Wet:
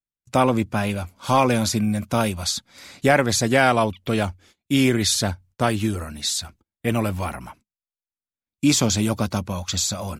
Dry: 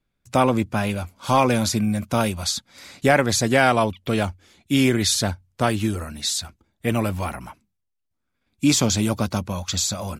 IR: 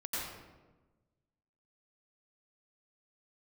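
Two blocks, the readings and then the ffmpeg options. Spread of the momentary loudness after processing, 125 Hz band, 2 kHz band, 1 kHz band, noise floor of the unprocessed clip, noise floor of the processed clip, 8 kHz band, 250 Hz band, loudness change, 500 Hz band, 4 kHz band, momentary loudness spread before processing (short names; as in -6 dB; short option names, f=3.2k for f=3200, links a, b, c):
9 LU, 0.0 dB, 0.0 dB, 0.0 dB, -77 dBFS, under -85 dBFS, 0.0 dB, 0.0 dB, 0.0 dB, 0.0 dB, 0.0 dB, 9 LU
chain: -af "agate=range=-25dB:threshold=-49dB:ratio=16:detection=peak"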